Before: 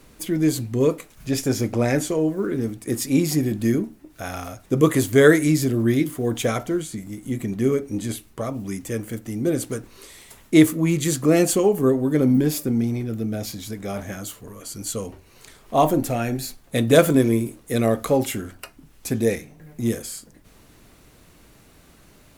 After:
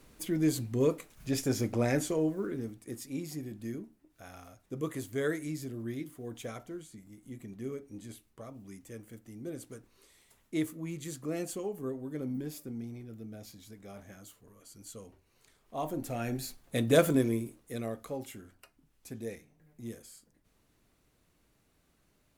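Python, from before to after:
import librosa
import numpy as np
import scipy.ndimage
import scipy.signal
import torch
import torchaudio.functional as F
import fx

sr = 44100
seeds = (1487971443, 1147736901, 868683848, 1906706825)

y = fx.gain(x, sr, db=fx.line((2.25, -8.0), (3.08, -18.5), (15.8, -18.5), (16.3, -9.0), (17.14, -9.0), (18.04, -19.0)))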